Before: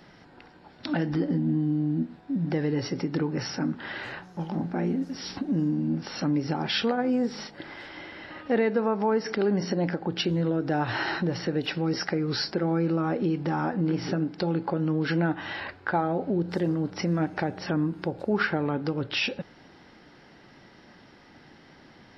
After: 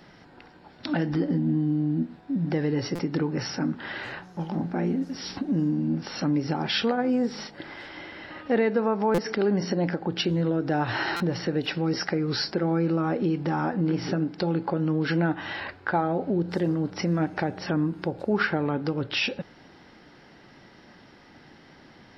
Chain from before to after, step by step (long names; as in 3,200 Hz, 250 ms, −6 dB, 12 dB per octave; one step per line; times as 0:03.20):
buffer that repeats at 0:02.95/0:09.14/0:11.16, samples 256, times 6
level +1 dB